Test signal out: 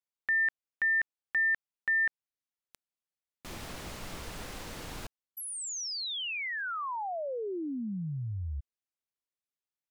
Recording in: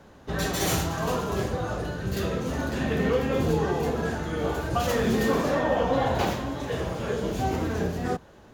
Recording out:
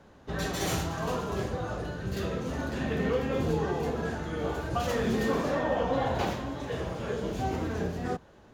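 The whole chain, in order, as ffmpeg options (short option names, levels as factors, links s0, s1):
-af "highshelf=f=10000:g=-8,volume=0.631"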